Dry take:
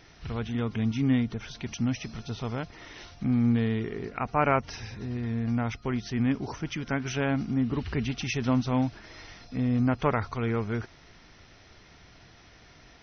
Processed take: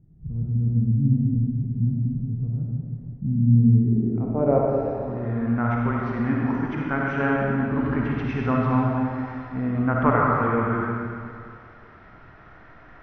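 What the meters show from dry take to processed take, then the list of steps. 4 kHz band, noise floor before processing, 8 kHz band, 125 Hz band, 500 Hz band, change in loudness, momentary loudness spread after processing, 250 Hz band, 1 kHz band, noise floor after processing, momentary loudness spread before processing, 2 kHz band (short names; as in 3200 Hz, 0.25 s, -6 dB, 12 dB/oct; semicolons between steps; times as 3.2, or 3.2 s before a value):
under -10 dB, -55 dBFS, n/a, +8.5 dB, +7.0 dB, +6.0 dB, 11 LU, +4.5 dB, +6.5 dB, -48 dBFS, 12 LU, +5.0 dB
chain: low-pass sweep 160 Hz -> 1400 Hz, 3.53–5.34; digital reverb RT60 2.2 s, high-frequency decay 0.85×, pre-delay 15 ms, DRR -3 dB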